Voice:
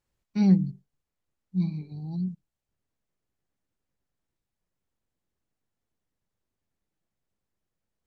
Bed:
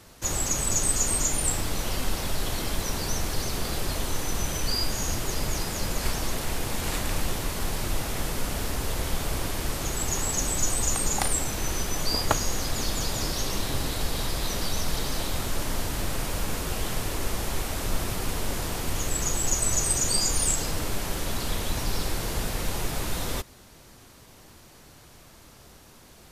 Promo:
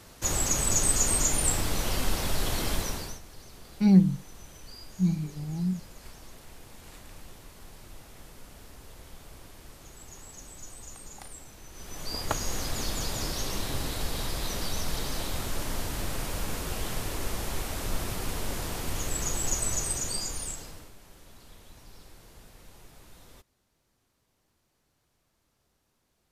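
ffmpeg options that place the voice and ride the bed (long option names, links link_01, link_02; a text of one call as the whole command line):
ffmpeg -i stem1.wav -i stem2.wav -filter_complex "[0:a]adelay=3450,volume=1.5dB[link_01];[1:a]volume=16dB,afade=type=out:start_time=2.73:duration=0.47:silence=0.105925,afade=type=in:start_time=11.72:duration=0.84:silence=0.158489,afade=type=out:start_time=19.52:duration=1.41:silence=0.105925[link_02];[link_01][link_02]amix=inputs=2:normalize=0" out.wav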